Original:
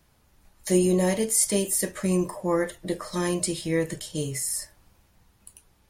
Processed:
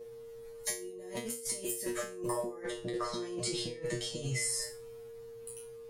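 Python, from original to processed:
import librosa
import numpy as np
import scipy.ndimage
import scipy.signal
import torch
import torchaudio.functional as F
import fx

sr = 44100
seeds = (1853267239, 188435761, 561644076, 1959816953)

y = fx.lowpass(x, sr, hz=6600.0, slope=12, at=(2.6, 4.6), fade=0.02)
y = fx.over_compress(y, sr, threshold_db=-31.0, ratio=-0.5)
y = y + 10.0 ** (-36.0 / 20.0) * np.sin(2.0 * np.pi * 460.0 * np.arange(len(y)) / sr)
y = fx.comb_fb(y, sr, f0_hz=120.0, decay_s=0.32, harmonics='all', damping=0.0, mix_pct=100)
y = y * 10.0 ** (5.5 / 20.0)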